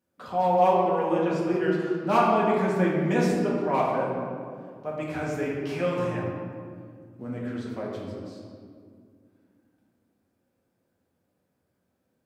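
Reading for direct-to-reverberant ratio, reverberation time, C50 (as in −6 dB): −6.0 dB, 2.1 s, −0.5 dB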